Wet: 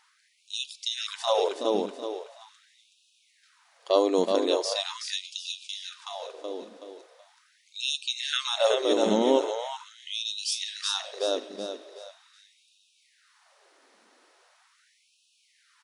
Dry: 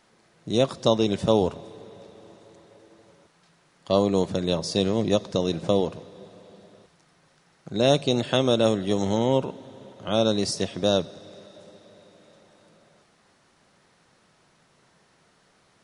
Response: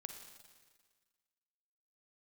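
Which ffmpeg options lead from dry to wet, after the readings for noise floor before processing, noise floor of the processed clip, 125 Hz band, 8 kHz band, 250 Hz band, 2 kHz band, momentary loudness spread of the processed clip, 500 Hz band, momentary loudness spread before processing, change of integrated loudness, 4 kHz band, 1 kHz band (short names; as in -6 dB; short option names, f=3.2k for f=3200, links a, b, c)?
-63 dBFS, -67 dBFS, under -20 dB, +1.5 dB, -7.5 dB, +0.5 dB, 17 LU, -3.0 dB, 9 LU, -4.5 dB, +1.5 dB, -1.0 dB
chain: -af "aecho=1:1:375|750|1125|1500|1875:0.562|0.214|0.0812|0.0309|0.0117,afftfilt=real='re*gte(b*sr/1024,210*pow(2500/210,0.5+0.5*sin(2*PI*0.41*pts/sr)))':imag='im*gte(b*sr/1024,210*pow(2500/210,0.5+0.5*sin(2*PI*0.41*pts/sr)))':win_size=1024:overlap=0.75"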